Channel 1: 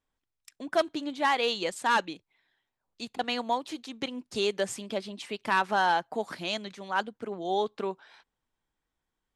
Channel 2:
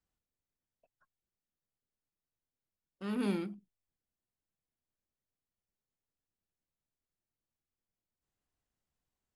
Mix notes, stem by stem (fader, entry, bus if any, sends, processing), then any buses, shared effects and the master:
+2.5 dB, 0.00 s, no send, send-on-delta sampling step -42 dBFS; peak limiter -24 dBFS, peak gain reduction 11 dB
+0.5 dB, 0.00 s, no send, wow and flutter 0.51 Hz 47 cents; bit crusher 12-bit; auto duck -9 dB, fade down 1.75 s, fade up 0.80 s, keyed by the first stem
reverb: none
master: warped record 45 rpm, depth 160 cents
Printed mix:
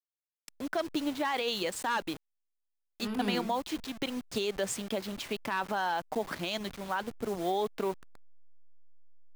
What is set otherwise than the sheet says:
stem 2 +0.5 dB -> +8.5 dB; master: missing warped record 45 rpm, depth 160 cents

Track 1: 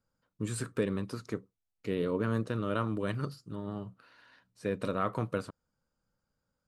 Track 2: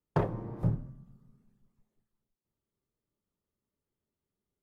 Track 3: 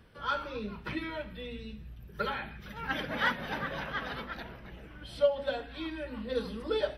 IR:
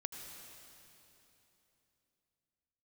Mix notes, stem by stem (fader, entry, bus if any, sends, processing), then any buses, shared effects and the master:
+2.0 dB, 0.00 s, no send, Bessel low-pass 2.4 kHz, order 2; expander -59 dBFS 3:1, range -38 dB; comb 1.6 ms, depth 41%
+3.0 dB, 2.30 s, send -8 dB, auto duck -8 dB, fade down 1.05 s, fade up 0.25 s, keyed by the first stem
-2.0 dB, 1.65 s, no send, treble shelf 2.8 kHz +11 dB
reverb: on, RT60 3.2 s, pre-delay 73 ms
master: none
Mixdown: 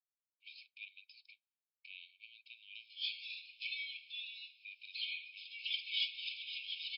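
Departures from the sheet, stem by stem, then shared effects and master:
stem 2 +3.0 dB -> -6.5 dB; stem 3: entry 1.65 s -> 2.75 s; master: extra brick-wall FIR band-pass 2.2–5.4 kHz

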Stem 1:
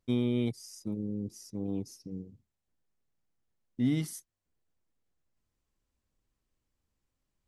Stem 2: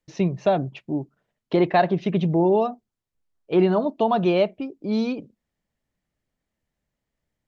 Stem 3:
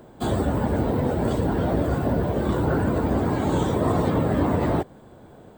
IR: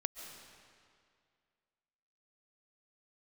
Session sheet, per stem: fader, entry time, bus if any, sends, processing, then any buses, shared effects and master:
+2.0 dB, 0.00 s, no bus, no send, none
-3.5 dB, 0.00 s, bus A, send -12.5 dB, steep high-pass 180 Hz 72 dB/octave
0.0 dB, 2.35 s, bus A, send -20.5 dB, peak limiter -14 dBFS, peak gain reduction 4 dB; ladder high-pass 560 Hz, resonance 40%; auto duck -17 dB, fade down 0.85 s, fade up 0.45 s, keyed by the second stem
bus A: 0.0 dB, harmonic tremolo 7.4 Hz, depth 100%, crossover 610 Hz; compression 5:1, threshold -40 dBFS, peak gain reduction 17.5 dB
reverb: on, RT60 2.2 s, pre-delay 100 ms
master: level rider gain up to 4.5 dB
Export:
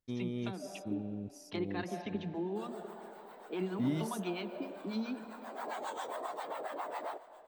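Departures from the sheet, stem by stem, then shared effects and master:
stem 1 +2.0 dB -> -10.0 dB; stem 2 -3.5 dB -> -11.5 dB

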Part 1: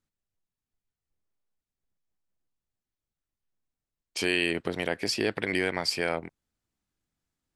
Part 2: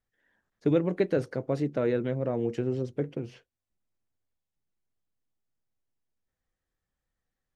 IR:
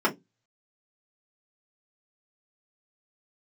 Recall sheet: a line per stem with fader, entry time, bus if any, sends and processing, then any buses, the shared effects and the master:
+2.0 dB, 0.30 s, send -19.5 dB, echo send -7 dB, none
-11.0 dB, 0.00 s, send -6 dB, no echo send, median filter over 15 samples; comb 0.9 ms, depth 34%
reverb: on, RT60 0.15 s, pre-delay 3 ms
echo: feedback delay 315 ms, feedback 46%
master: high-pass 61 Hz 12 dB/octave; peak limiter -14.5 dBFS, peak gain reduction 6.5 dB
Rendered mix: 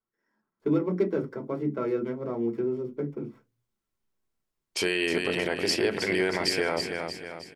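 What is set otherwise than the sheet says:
stem 1: entry 0.30 s -> 0.60 s; master: missing high-pass 61 Hz 12 dB/octave

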